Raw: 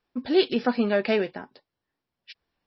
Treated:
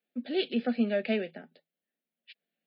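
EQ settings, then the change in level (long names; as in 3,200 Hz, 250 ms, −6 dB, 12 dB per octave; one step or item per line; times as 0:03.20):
Chebyshev high-pass with heavy ripple 160 Hz, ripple 9 dB
high-shelf EQ 3,600 Hz +10.5 dB
phaser with its sweep stopped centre 2,400 Hz, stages 4
0.0 dB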